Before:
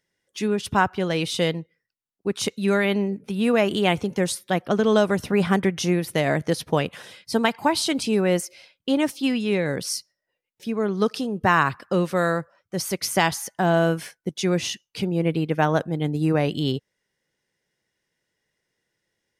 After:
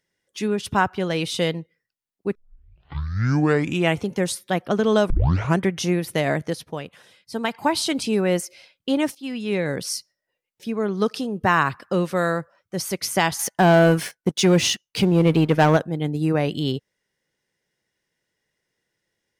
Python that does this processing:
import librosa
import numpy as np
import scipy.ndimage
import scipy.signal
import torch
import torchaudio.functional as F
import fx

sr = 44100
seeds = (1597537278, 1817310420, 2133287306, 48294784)

y = fx.leveller(x, sr, passes=2, at=(13.39, 15.77))
y = fx.edit(y, sr, fx.tape_start(start_s=2.35, length_s=1.68),
    fx.tape_start(start_s=5.1, length_s=0.5),
    fx.fade_down_up(start_s=6.31, length_s=1.37, db=-9.5, fade_s=0.4),
    fx.fade_in_from(start_s=9.15, length_s=0.45, floor_db=-16.5), tone=tone)